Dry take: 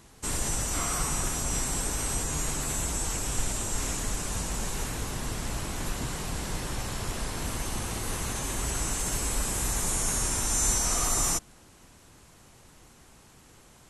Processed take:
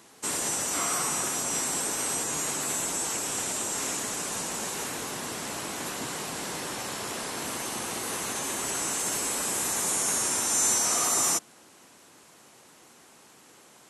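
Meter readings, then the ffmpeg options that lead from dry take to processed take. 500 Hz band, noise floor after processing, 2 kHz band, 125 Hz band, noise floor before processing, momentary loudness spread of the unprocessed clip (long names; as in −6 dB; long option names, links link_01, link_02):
+2.0 dB, −55 dBFS, +2.5 dB, −11.5 dB, −55 dBFS, 9 LU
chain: -af "highpass=260,volume=2.5dB"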